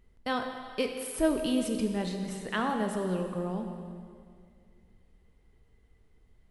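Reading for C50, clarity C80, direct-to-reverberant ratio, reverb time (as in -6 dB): 5.5 dB, 6.5 dB, 4.0 dB, 2.2 s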